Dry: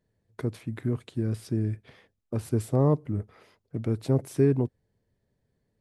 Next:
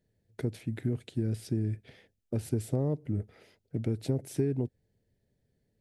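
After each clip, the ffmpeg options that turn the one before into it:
-af "equalizer=f=1.1k:w=2.6:g=-14,acompressor=threshold=-25dB:ratio=6"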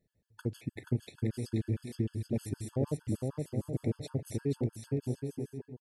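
-af "aecho=1:1:480|792|994.8|1127|1212:0.631|0.398|0.251|0.158|0.1,afftfilt=real='re*gt(sin(2*PI*6.5*pts/sr)*(1-2*mod(floor(b*sr/1024/870),2)),0)':imag='im*gt(sin(2*PI*6.5*pts/sr)*(1-2*mod(floor(b*sr/1024/870),2)),0)':win_size=1024:overlap=0.75"

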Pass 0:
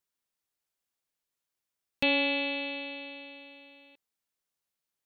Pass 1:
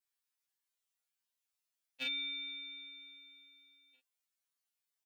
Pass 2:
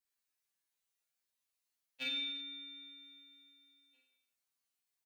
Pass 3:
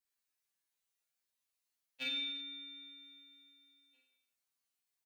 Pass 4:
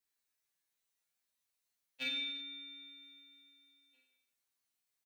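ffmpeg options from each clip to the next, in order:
-filter_complex "[0:a]highpass=f=1.4k:p=1,asplit=2[a][b];[b]adelay=35,volume=-2dB[c];[a][c]amix=inputs=2:normalize=0,afftfilt=real='re*2.45*eq(mod(b,6),0)':imag='im*2.45*eq(mod(b,6),0)':win_size=2048:overlap=0.75,volume=-1.5dB"
-af "aecho=1:1:50|107.5|173.6|249.7|337.1:0.631|0.398|0.251|0.158|0.1,volume=-1.5dB"
-af anull
-filter_complex "[0:a]asplit=2[a][b];[b]adelay=16,volume=-13.5dB[c];[a][c]amix=inputs=2:normalize=0,volume=1dB"

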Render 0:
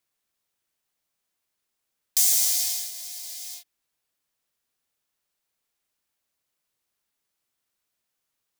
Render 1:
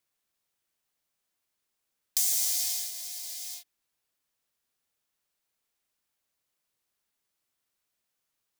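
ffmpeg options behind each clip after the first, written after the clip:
-af "acompressor=threshold=-25dB:ratio=2,volume=-1.5dB"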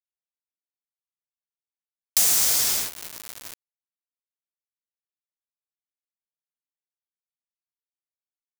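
-af "acrusher=bits=4:mix=0:aa=0.000001,volume=6.5dB"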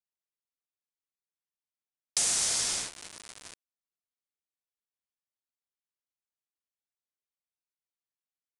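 -af "aresample=22050,aresample=44100,volume=-5dB"

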